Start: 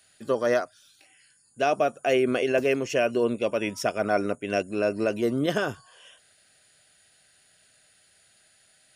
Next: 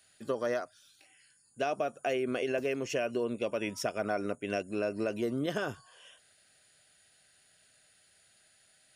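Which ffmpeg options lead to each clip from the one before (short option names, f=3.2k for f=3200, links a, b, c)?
-af "acompressor=threshold=-24dB:ratio=5,volume=-4dB"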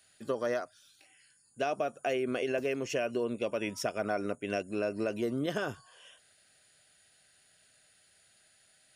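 -af anull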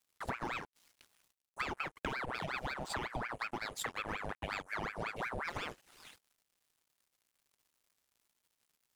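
-af "acompressor=threshold=-40dB:ratio=8,aeval=exprs='sgn(val(0))*max(abs(val(0))-0.00112,0)':c=same,aeval=exprs='val(0)*sin(2*PI*1100*n/s+1100*0.8/5.5*sin(2*PI*5.5*n/s))':c=same,volume=7.5dB"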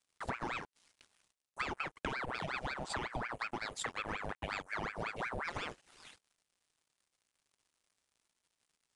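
-af "aresample=22050,aresample=44100"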